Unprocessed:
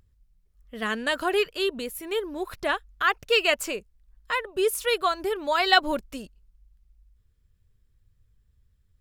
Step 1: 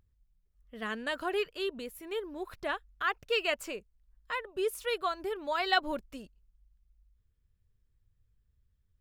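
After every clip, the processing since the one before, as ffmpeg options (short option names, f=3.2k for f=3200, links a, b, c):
-af "equalizer=f=10k:w=0.4:g=-5,volume=-7.5dB"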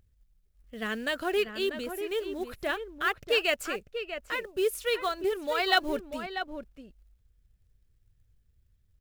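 -filter_complex "[0:a]acrusher=bits=6:mode=log:mix=0:aa=0.000001,equalizer=f=1k:w=2.3:g=-7,asplit=2[a][b];[b]adelay=641.4,volume=-8dB,highshelf=f=4k:g=-14.4[c];[a][c]amix=inputs=2:normalize=0,volume=4.5dB"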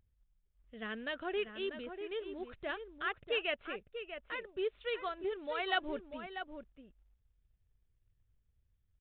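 -af "acrusher=bits=6:mode=log:mix=0:aa=0.000001,aresample=8000,aresample=44100,volume=-8.5dB"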